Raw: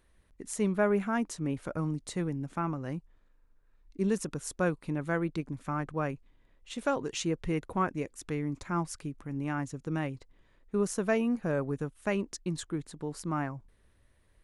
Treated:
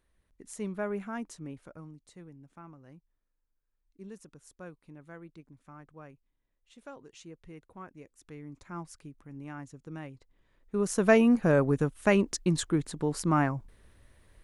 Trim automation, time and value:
1.32 s -7 dB
1.98 s -17 dB
7.79 s -17 dB
8.76 s -9 dB
10.12 s -9 dB
10.82 s 0 dB
11.09 s +7 dB

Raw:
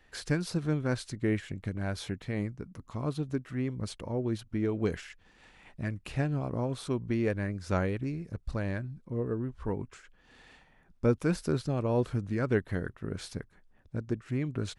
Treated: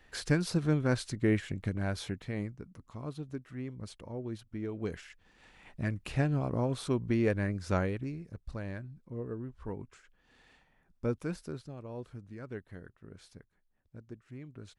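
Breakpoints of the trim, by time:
1.68 s +1.5 dB
3.02 s -7.5 dB
4.70 s -7.5 dB
5.83 s +1 dB
7.58 s +1 dB
8.35 s -6.5 dB
11.18 s -6.5 dB
11.76 s -14.5 dB

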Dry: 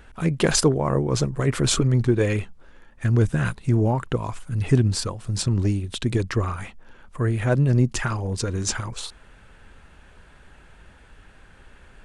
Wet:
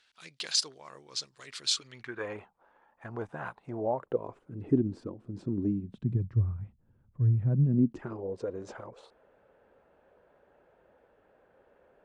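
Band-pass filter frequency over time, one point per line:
band-pass filter, Q 2.7
1.83 s 4.4 kHz
2.31 s 840 Hz
3.56 s 840 Hz
4.72 s 300 Hz
5.56 s 300 Hz
6.37 s 110 Hz
7.26 s 110 Hz
8.40 s 540 Hz

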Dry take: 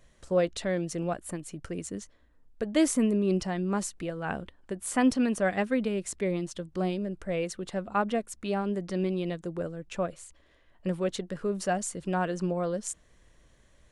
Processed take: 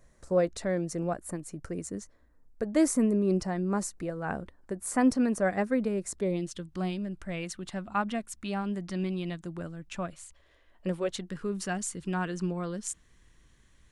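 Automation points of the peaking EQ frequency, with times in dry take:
peaking EQ -12 dB 0.71 oct
6.10 s 3.1 kHz
6.68 s 480 Hz
10.14 s 480 Hz
10.92 s 86 Hz
11.24 s 590 Hz

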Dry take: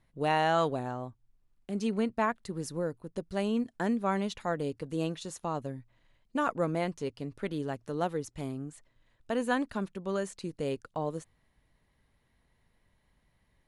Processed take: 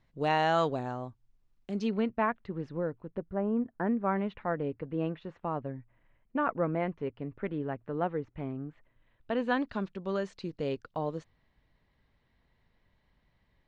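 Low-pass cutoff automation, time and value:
low-pass 24 dB/octave
1.70 s 6.8 kHz
2.14 s 2.9 kHz
3.07 s 2.9 kHz
3.39 s 1.4 kHz
4.29 s 2.4 kHz
8.65 s 2.4 kHz
9.75 s 5 kHz

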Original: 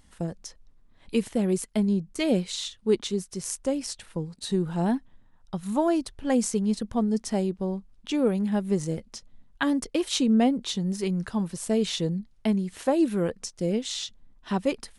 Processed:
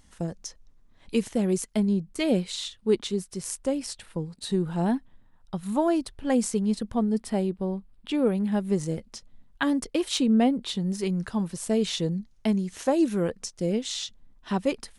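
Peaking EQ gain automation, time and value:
peaking EQ 6.2 kHz 0.45 oct
+4.5 dB
from 1.80 s -3.5 dB
from 6.96 s -13 dB
from 8.49 s -1.5 dB
from 10.17 s -8 dB
from 10.84 s 0 dB
from 12.12 s +7 dB
from 13.18 s +0.5 dB

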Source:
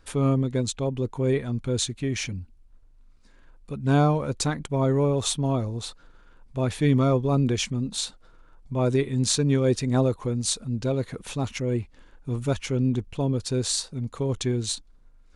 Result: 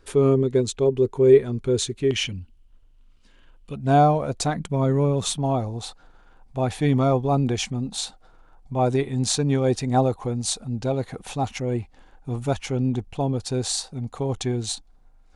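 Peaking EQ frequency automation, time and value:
peaking EQ +13.5 dB 0.34 oct
400 Hz
from 2.11 s 3 kHz
from 3.75 s 690 Hz
from 4.56 s 180 Hz
from 5.38 s 770 Hz

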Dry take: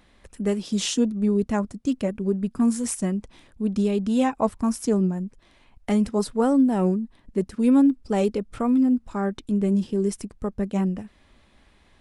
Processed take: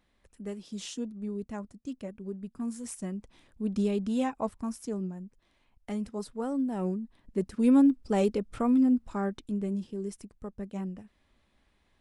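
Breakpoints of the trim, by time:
2.64 s -14 dB
3.85 s -5 dB
4.89 s -12.5 dB
6.45 s -12.5 dB
7.64 s -3.5 dB
9.07 s -3.5 dB
9.87 s -12 dB

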